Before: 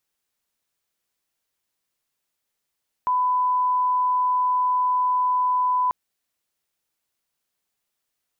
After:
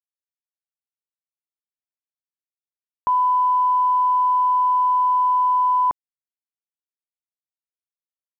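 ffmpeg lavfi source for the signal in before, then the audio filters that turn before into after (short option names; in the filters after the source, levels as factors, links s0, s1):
-f lavfi -i "sine=f=1000:d=2.84:r=44100,volume=0.06dB"
-af "acrusher=bits=7:mix=0:aa=0.000001,lowpass=f=1100:p=1,acontrast=50"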